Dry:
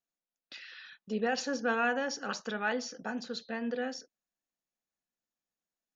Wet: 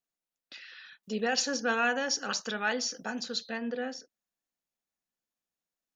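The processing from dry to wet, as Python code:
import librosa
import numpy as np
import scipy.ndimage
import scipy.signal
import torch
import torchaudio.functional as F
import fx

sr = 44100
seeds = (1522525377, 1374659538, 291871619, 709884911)

y = fx.high_shelf(x, sr, hz=3100.0, db=12.0, at=(1.03, 3.58))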